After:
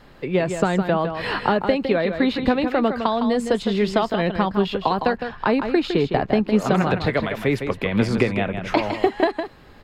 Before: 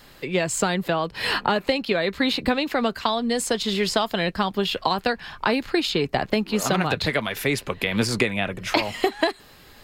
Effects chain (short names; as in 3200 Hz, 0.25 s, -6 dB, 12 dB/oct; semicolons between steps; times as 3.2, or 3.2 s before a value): LPF 1100 Hz 6 dB/oct; on a send: echo 0.159 s -8 dB; on the sum: gain +4 dB